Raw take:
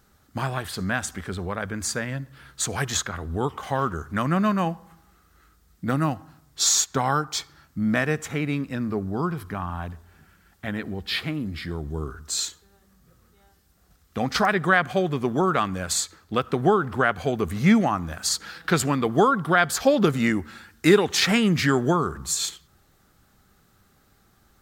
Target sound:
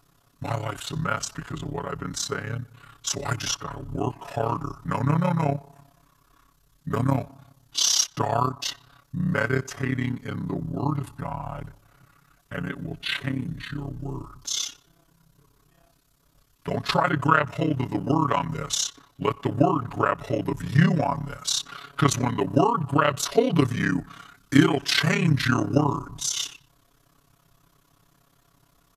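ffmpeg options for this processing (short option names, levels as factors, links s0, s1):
-af "tremolo=f=39:d=0.947,asetrate=37485,aresample=44100,aecho=1:1:7.1:0.98"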